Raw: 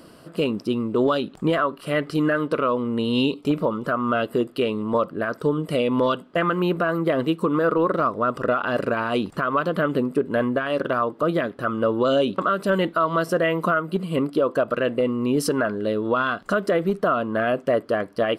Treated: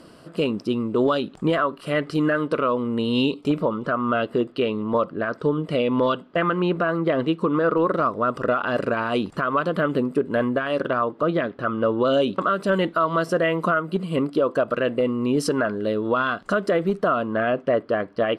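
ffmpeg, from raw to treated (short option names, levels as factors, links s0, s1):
-af "asetnsamples=n=441:p=0,asendcmd='3.62 lowpass f 5000;7.78 lowpass f 9500;10.89 lowpass f 4500;12.14 lowpass f 9100;17.34 lowpass f 3800',lowpass=9400"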